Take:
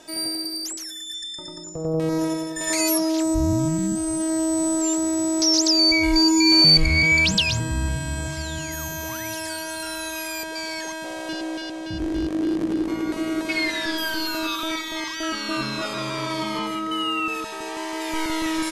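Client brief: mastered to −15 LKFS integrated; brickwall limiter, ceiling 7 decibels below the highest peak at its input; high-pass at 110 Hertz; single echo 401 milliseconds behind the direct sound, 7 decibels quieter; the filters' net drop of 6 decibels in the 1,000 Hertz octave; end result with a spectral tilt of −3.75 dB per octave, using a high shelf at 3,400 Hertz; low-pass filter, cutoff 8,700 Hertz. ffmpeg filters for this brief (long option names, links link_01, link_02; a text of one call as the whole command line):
ffmpeg -i in.wav -af "highpass=110,lowpass=8700,equalizer=frequency=1000:width_type=o:gain=-8,highshelf=frequency=3400:gain=6,alimiter=limit=-11dB:level=0:latency=1,aecho=1:1:401:0.447,volume=6.5dB" out.wav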